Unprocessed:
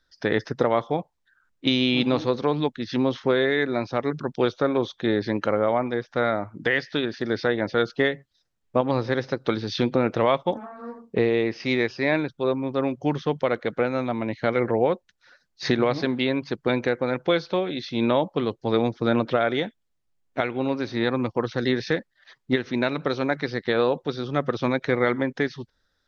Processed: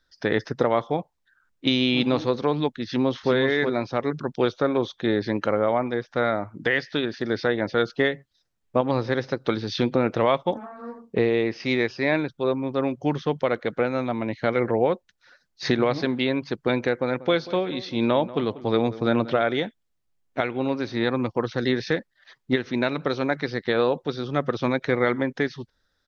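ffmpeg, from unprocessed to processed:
-filter_complex "[0:a]asplit=2[s0][s1];[s1]afade=t=in:st=2.86:d=0.01,afade=t=out:st=3.32:d=0.01,aecho=0:1:370|740:0.530884|0.0530884[s2];[s0][s2]amix=inputs=2:normalize=0,asettb=1/sr,asplit=3[s3][s4][s5];[s3]atrim=end=16.984[s6];[s4]atrim=start=16.98:end=19.42,asetpts=PTS-STARTPTS,afade=t=in:d=0.004:c=qsin,afade=t=out:st=2.436:d=0.004:c=qsin,asplit=2[s7][s8];[s8]adelay=189,lowpass=f=2000:p=1,volume=0.15,asplit=2[s9][s10];[s10]adelay=189,lowpass=f=2000:p=1,volume=0.36,asplit=2[s11][s12];[s12]adelay=189,lowpass=f=2000:p=1,volume=0.36[s13];[s7][s9][s11][s13]amix=inputs=4:normalize=0,atrim=end_sample=107604[s14];[s5]atrim=start=19.416[s15];[s6][s14]acrossfade=d=0.004:c1=hsin:c2=qsin[s16];[s16][s15]acrossfade=d=0.004:c1=qsin:c2=hsin"

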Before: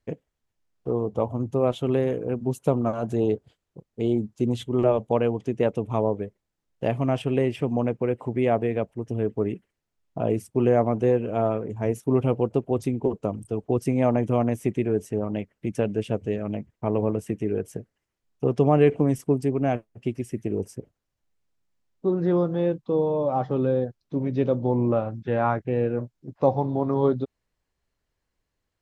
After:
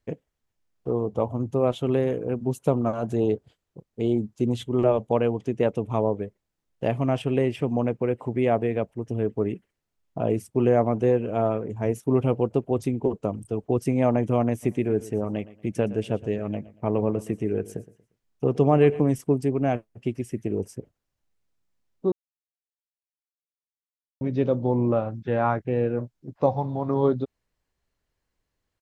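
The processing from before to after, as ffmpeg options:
-filter_complex "[0:a]asplit=3[s0][s1][s2];[s0]afade=t=out:st=14.62:d=0.02[s3];[s1]aecho=1:1:117|234|351:0.126|0.0378|0.0113,afade=t=in:st=14.62:d=0.02,afade=t=out:st=19.07:d=0.02[s4];[s2]afade=t=in:st=19.07:d=0.02[s5];[s3][s4][s5]amix=inputs=3:normalize=0,asettb=1/sr,asplit=3[s6][s7][s8];[s6]atrim=end=26.464[s9];[s7]atrim=start=26.46:end=26.89,asetpts=PTS-STARTPTS,afade=t=in:d=0.004:c=qsin,afade=t=out:st=0.426:d=0.004:c=qsin,equalizer=f=350:w=1.5:g=-8[s10];[s8]atrim=start=26.886[s11];[s9][s10]acrossfade=d=0.004:c1=hsin:c2=qsin[s12];[s12][s11]acrossfade=d=0.004:c1=qsin:c2=hsin,asplit=3[s13][s14][s15];[s13]atrim=end=22.12,asetpts=PTS-STARTPTS,afade=t=out:st=22.116:d=0.004:c=hsin[s16];[s14]atrim=start=22.12:end=24.21,asetpts=PTS-STARTPTS,volume=0[s17];[s15]atrim=start=24.21,asetpts=PTS-STARTPTS,afade=t=in:d=0.004:c=hsin[s18];[s16][s17][s18]concat=n=3:v=0:a=1"

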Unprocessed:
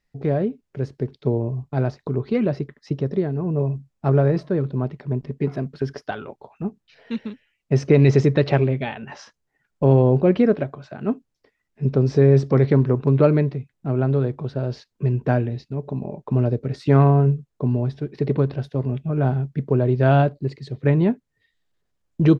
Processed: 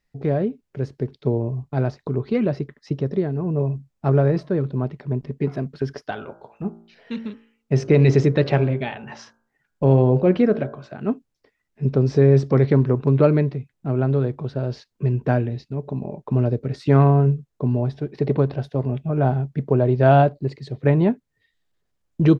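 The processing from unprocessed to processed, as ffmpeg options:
-filter_complex "[0:a]asettb=1/sr,asplit=3[s0][s1][s2];[s0]atrim=end=6.024[s3];[s1]atrim=start=6.02:end=10.93,asetpts=PTS-STARTPTS,afade=t=in:d=0.004:c=qsin,afade=t=out:st=4.906:d=0.004:c=qsin,bandreject=f=56.68:t=h:w=4,bandreject=f=113.36:t=h:w=4,bandreject=f=170.04:t=h:w=4,bandreject=f=226.72:t=h:w=4,bandreject=f=283.4:t=h:w=4,bandreject=f=340.08:t=h:w=4,bandreject=f=396.76:t=h:w=4,bandreject=f=453.44:t=h:w=4,bandreject=f=510.12:t=h:w=4,bandreject=f=566.8:t=h:w=4,bandreject=f=623.48:t=h:w=4,bandreject=f=680.16:t=h:w=4,bandreject=f=736.84:t=h:w=4,bandreject=f=793.52:t=h:w=4,bandreject=f=850.2:t=h:w=4,bandreject=f=906.88:t=h:w=4,bandreject=f=963.56:t=h:w=4,bandreject=f=1020.24:t=h:w=4,bandreject=f=1076.92:t=h:w=4,bandreject=f=1133.6:t=h:w=4,bandreject=f=1190.28:t=h:w=4,bandreject=f=1246.96:t=h:w=4,bandreject=f=1303.64:t=h:w=4,bandreject=f=1360.32:t=h:w=4,bandreject=f=1417:t=h:w=4,bandreject=f=1473.68:t=h:w=4,bandreject=f=1530.36:t=h:w=4,bandreject=f=1587.04:t=h:w=4,bandreject=f=1643.72:t=h:w=4[s4];[s2]atrim=start=10.926[s5];[s3][s4]acrossfade=d=0.004:c1=hsin:c2=qsin[s6];[s6][s5]acrossfade=d=0.004:c1=qsin:c2=hsin,asettb=1/sr,asplit=3[s7][s8][s9];[s7]atrim=end=17.764[s10];[s8]atrim=start=17.76:end=21.09,asetpts=PTS-STARTPTS,afade=t=in:d=0.004:c=qsin,afade=t=out:st=3.326:d=0.004:c=qsin,equalizer=f=720:w=1.5:g=5[s11];[s9]atrim=start=21.086[s12];[s10][s11]acrossfade=d=0.004:c1=hsin:c2=qsin[s13];[s13][s12]acrossfade=d=0.004:c1=qsin:c2=hsin"

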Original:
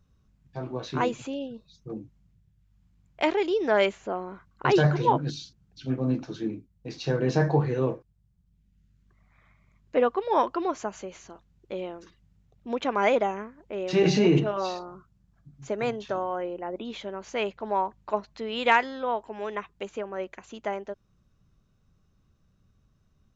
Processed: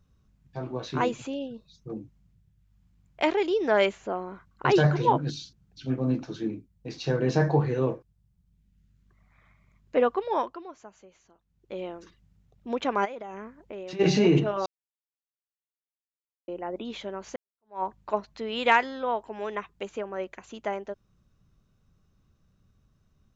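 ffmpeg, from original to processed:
-filter_complex "[0:a]asplit=3[s0][s1][s2];[s0]afade=t=out:st=13.04:d=0.02[s3];[s1]acompressor=threshold=0.02:ratio=16:attack=3.2:release=140:knee=1:detection=peak,afade=t=in:st=13.04:d=0.02,afade=t=out:st=13.99:d=0.02[s4];[s2]afade=t=in:st=13.99:d=0.02[s5];[s3][s4][s5]amix=inputs=3:normalize=0,asplit=6[s6][s7][s8][s9][s10][s11];[s6]atrim=end=10.63,asetpts=PTS-STARTPTS,afade=t=out:st=10.16:d=0.47:silence=0.177828[s12];[s7]atrim=start=10.63:end=11.42,asetpts=PTS-STARTPTS,volume=0.178[s13];[s8]atrim=start=11.42:end=14.66,asetpts=PTS-STARTPTS,afade=t=in:d=0.47:silence=0.177828,afade=t=out:st=3.236:d=0.004:c=hsin[s14];[s9]atrim=start=14.66:end=16.48,asetpts=PTS-STARTPTS,volume=0[s15];[s10]atrim=start=16.48:end=17.36,asetpts=PTS-STARTPTS,afade=t=in:d=0.004:c=hsin,afade=t=out:st=0.876:d=0.004:c=hsin[s16];[s11]atrim=start=17.36,asetpts=PTS-STARTPTS,afade=t=in:d=0.47:c=exp[s17];[s12][s13][s14][s15][s16][s17]concat=n=6:v=0:a=1"

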